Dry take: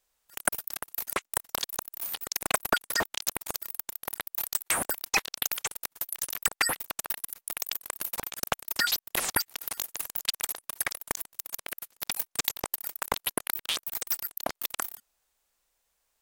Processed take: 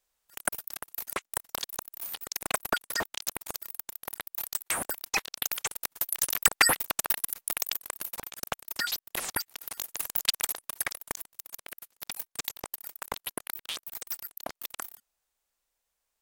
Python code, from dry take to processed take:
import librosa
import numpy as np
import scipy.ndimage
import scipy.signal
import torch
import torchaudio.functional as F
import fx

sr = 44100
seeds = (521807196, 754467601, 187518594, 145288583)

y = fx.gain(x, sr, db=fx.line((5.27, -3.0), (6.23, 5.0), (7.41, 5.0), (8.17, -4.5), (9.7, -4.5), (10.17, 4.0), (11.44, -6.0)))